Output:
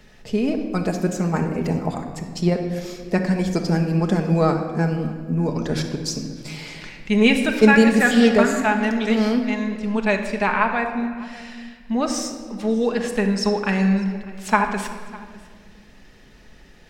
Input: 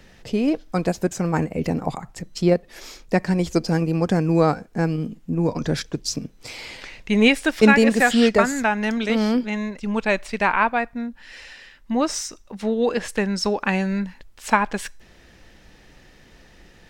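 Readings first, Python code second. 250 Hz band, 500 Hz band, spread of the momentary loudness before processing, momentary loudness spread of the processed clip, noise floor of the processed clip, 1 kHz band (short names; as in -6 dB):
+1.5 dB, +0.5 dB, 17 LU, 17 LU, -48 dBFS, 0.0 dB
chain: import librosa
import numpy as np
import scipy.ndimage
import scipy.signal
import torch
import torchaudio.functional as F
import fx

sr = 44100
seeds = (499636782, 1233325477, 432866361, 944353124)

y = x + 10.0 ** (-22.5 / 20.0) * np.pad(x, (int(601 * sr / 1000.0), 0))[:len(x)]
y = fx.room_shoebox(y, sr, seeds[0], volume_m3=2500.0, walls='mixed', distance_m=1.4)
y = y * librosa.db_to_amplitude(-2.0)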